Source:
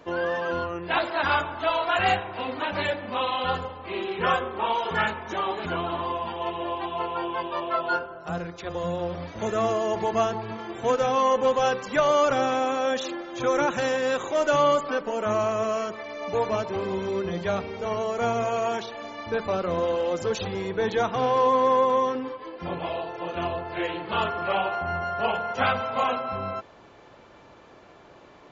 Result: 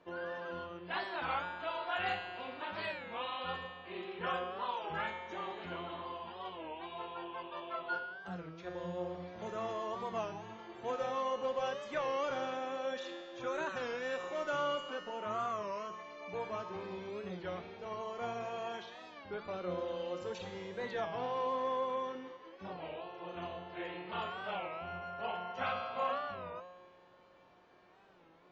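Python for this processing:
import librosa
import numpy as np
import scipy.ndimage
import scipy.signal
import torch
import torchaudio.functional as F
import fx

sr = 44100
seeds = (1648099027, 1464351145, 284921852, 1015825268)

y = scipy.signal.sosfilt(scipy.signal.butter(2, 4900.0, 'lowpass', fs=sr, output='sos'), x)
y = fx.low_shelf(y, sr, hz=200.0, db=-4.0)
y = fx.comb_fb(y, sr, f0_hz=180.0, decay_s=1.5, harmonics='all', damping=0.0, mix_pct=90)
y = fx.record_warp(y, sr, rpm=33.33, depth_cents=160.0)
y = F.gain(torch.from_numpy(y), 4.5).numpy()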